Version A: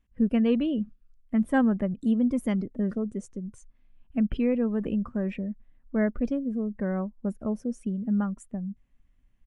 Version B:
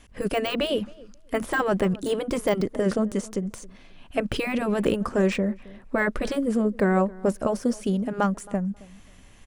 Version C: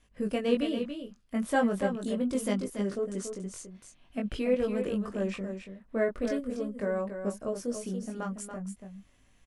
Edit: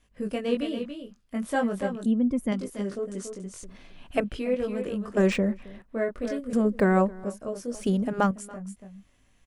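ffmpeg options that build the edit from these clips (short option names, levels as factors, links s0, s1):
-filter_complex "[1:a]asplit=4[s0][s1][s2][s3];[2:a]asplit=6[s4][s5][s6][s7][s8][s9];[s4]atrim=end=2.062[s10];[0:a]atrim=start=2.058:end=2.522[s11];[s5]atrim=start=2.518:end=3.632[s12];[s0]atrim=start=3.628:end=4.242[s13];[s6]atrim=start=4.238:end=5.172[s14];[s1]atrim=start=5.168:end=5.822[s15];[s7]atrim=start=5.818:end=6.532[s16];[s2]atrim=start=6.528:end=7.242[s17];[s8]atrim=start=7.238:end=7.752[s18];[s3]atrim=start=7.748:end=8.312[s19];[s9]atrim=start=8.308[s20];[s10][s11]acrossfade=d=0.004:c1=hsin:c2=hsin[s21];[s21][s12]acrossfade=d=0.004:c1=hsin:c2=hsin[s22];[s22][s13]acrossfade=d=0.004:c1=hsin:c2=hsin[s23];[s23][s14]acrossfade=d=0.004:c1=hsin:c2=hsin[s24];[s24][s15]acrossfade=d=0.004:c1=hsin:c2=hsin[s25];[s25][s16]acrossfade=d=0.004:c1=hsin:c2=hsin[s26];[s26][s17]acrossfade=d=0.004:c1=hsin:c2=hsin[s27];[s27][s18]acrossfade=d=0.004:c1=hsin:c2=hsin[s28];[s28][s19]acrossfade=d=0.004:c1=hsin:c2=hsin[s29];[s29][s20]acrossfade=d=0.004:c1=hsin:c2=hsin"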